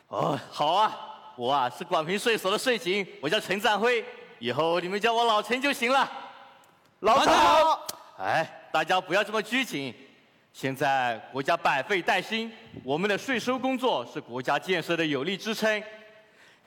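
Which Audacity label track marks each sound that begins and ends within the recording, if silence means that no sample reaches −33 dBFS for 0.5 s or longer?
7.030000	9.900000	sound
10.580000	15.830000	sound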